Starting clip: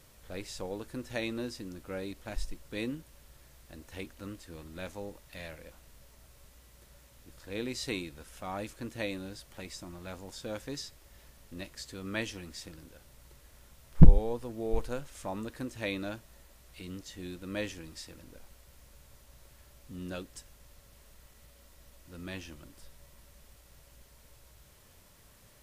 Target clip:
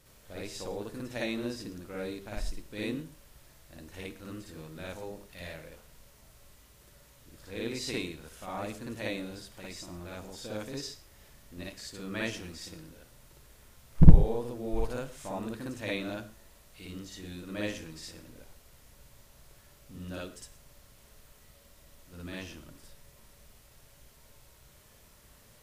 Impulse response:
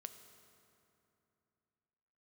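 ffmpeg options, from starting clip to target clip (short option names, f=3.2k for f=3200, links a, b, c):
-filter_complex "[0:a]asplit=2[a][b];[1:a]atrim=start_sample=2205,atrim=end_sample=6174,adelay=57[c];[b][c]afir=irnorm=-1:irlink=0,volume=9dB[d];[a][d]amix=inputs=2:normalize=0,volume=-4dB"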